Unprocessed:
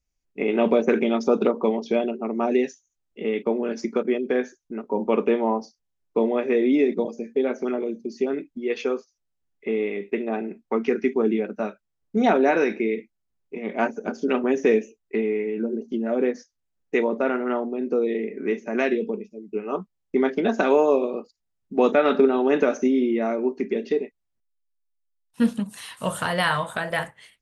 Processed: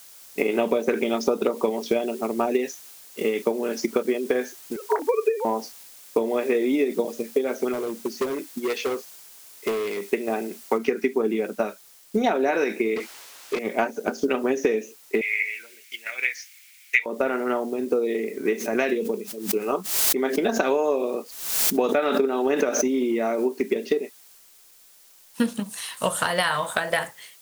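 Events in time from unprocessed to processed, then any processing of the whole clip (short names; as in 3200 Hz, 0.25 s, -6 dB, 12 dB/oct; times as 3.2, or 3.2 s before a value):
4.76–5.45 sine-wave speech
7.73–10.07 hard clip -25 dBFS
10.78 noise floor step -54 dB -60 dB
12.96–13.59 overdrive pedal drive 25 dB, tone 2100 Hz, clips at -21.5 dBFS
15.21–17.06 resonant high-pass 2200 Hz, resonance Q 6.9
18.52–23.47 backwards sustainer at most 70 dB/s
whole clip: tone controls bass -8 dB, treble +6 dB; transient shaper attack +6 dB, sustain +2 dB; compressor 4:1, threshold -20 dBFS; gain +1.5 dB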